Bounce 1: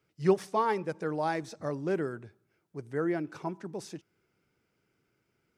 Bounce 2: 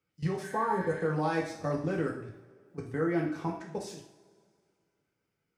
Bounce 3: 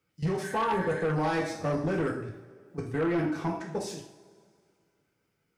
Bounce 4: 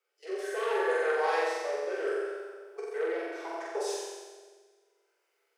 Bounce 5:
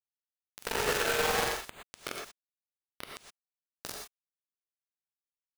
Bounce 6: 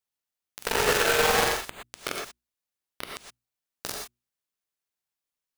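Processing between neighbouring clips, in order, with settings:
output level in coarse steps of 18 dB; healed spectral selection 0:00.46–0:01.02, 1,500–6,200 Hz after; coupled-rooms reverb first 0.53 s, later 2.2 s, from −21 dB, DRR −2.5 dB; level +3.5 dB
soft clipping −28 dBFS, distortion −12 dB; level +5.5 dB
Chebyshev high-pass filter 360 Hz, order 8; rotating-speaker cabinet horn 0.7 Hz; on a send: flutter between parallel walls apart 7.7 metres, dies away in 1.3 s
dynamic equaliser 5,900 Hz, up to +6 dB, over −54 dBFS, Q 1; bit reduction 4 bits; reverb whose tail is shaped and stops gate 140 ms rising, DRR 0.5 dB; level −4.5 dB
mains-hum notches 60/120/180/240/300/360 Hz; level +6.5 dB

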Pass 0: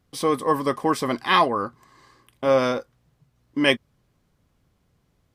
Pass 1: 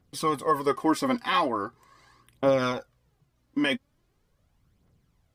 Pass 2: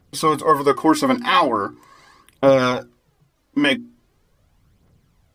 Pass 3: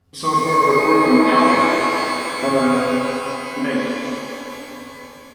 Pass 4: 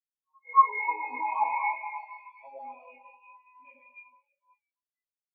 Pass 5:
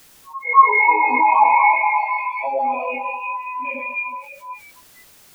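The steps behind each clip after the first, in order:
brickwall limiter −11 dBFS, peak gain reduction 7 dB; phase shifter 0.41 Hz, delay 4.2 ms, feedback 49%; level −4 dB
mains-hum notches 60/120/180/240/300/360 Hz; level +8.5 dB
treble cut that deepens with the level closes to 1,400 Hz, closed at −13 dBFS; double-tracking delay 12 ms −4 dB; reverb with rising layers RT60 3.7 s, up +12 semitones, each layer −8 dB, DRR −8 dB; level −8 dB
pair of resonant band-passes 1,500 Hz, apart 1.4 octaves; noise reduction from a noise print of the clip's start 23 dB; every bin expanded away from the loudest bin 2.5 to 1; level +5.5 dB
low-shelf EQ 380 Hz +4 dB; envelope flattener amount 50%; level +7 dB

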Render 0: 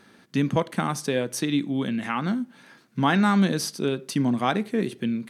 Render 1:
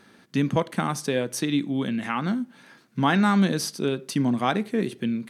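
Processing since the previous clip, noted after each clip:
no processing that can be heard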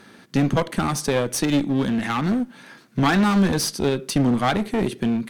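asymmetric clip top −28.5 dBFS
level +6.5 dB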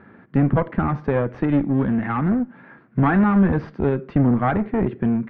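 low-pass filter 1,900 Hz 24 dB per octave
parametric band 76 Hz +7 dB 1.9 octaves

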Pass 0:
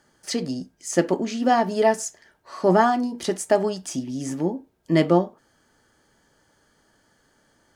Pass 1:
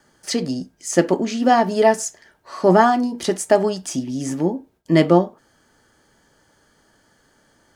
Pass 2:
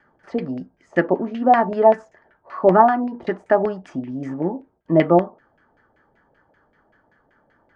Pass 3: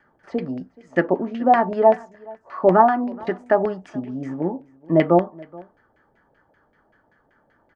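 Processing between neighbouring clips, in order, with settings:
noise gate with hold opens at −59 dBFS; level +4 dB
auto-filter low-pass saw down 5.2 Hz 590–2,300 Hz; level −3.5 dB
single-tap delay 426 ms −23.5 dB; level −1 dB

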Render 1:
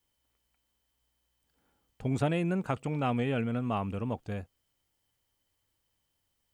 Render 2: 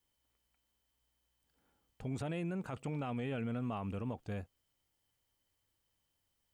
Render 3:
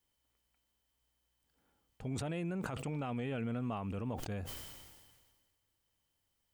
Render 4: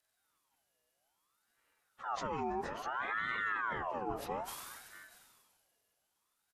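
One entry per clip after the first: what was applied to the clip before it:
brickwall limiter −28 dBFS, peak gain reduction 11.5 dB; level −3 dB
level that may fall only so fast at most 35 dB per second
partials spread apart or drawn together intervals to 88%; single-tap delay 636 ms −16.5 dB; ring modulator whose carrier an LFO sweeps 1,100 Hz, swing 50%, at 0.6 Hz; level +4.5 dB

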